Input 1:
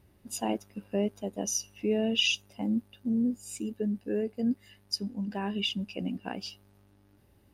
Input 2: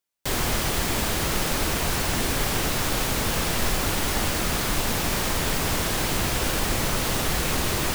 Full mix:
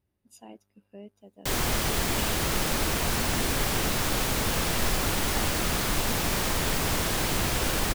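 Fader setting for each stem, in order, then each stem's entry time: -16.5, -2.0 dB; 0.00, 1.20 s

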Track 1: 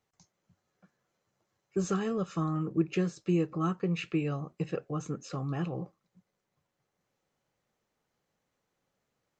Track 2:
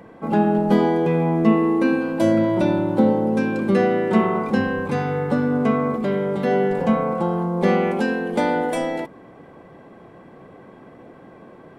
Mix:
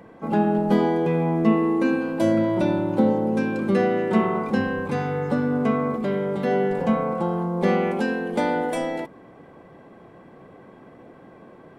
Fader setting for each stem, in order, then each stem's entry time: -18.0, -2.5 dB; 0.00, 0.00 s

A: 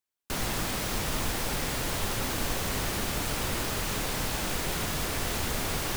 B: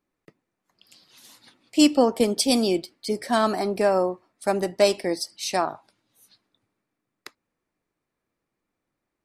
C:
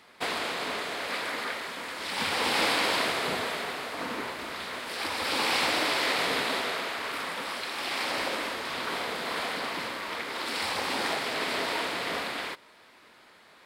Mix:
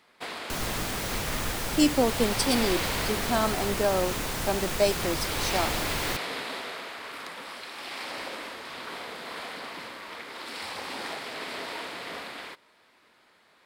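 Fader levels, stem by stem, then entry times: -1.0, -5.0, -6.0 dB; 0.20, 0.00, 0.00 s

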